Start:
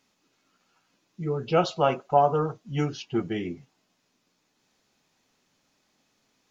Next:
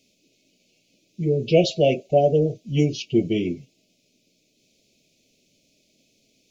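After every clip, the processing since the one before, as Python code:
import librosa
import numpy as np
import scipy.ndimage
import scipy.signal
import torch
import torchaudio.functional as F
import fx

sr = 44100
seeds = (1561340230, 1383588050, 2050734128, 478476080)

y = scipy.signal.sosfilt(scipy.signal.cheby1(4, 1.0, [640.0, 2300.0], 'bandstop', fs=sr, output='sos'), x)
y = y * 10.0 ** (7.5 / 20.0)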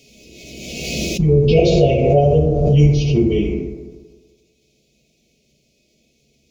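y = fx.octave_divider(x, sr, octaves=2, level_db=-4.0)
y = fx.rev_fdn(y, sr, rt60_s=1.5, lf_ratio=0.8, hf_ratio=0.35, size_ms=42.0, drr_db=-5.0)
y = fx.pre_swell(y, sr, db_per_s=31.0)
y = y * 10.0 ** (-3.0 / 20.0)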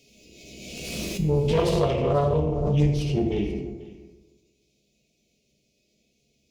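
y = fx.self_delay(x, sr, depth_ms=0.27)
y = fx.comb_fb(y, sr, f0_hz=100.0, decay_s=0.52, harmonics='all', damping=0.0, mix_pct=70)
y = y + 10.0 ** (-19.0 / 20.0) * np.pad(y, (int(488 * sr / 1000.0), 0))[:len(y)]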